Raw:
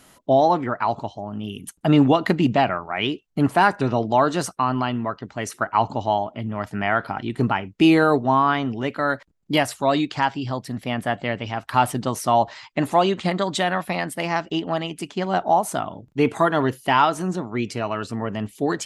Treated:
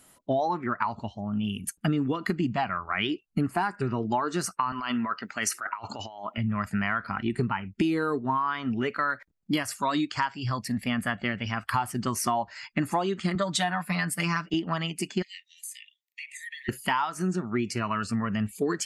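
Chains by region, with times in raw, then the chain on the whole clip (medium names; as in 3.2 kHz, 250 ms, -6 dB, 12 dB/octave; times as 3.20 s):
4.72–6.38 s: high-pass 510 Hz 6 dB/octave + compressor with a negative ratio -31 dBFS
13.35–14.54 s: comb 6.7 ms, depth 70% + three bands expanded up and down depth 40%
15.22–16.69 s: Chebyshev high-pass 1.8 kHz, order 10 + compression 5:1, threshold -40 dBFS
whole clip: spectral noise reduction 12 dB; dynamic bell 2.7 kHz, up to -4 dB, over -42 dBFS, Q 1.7; compression 12:1, threshold -27 dBFS; trim +4 dB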